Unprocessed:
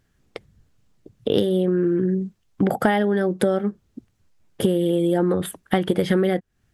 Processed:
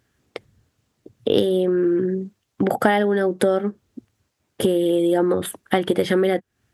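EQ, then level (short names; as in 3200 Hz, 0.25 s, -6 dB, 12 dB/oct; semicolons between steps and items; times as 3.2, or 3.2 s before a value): HPF 88 Hz; bell 170 Hz -9 dB 0.43 oct; +2.5 dB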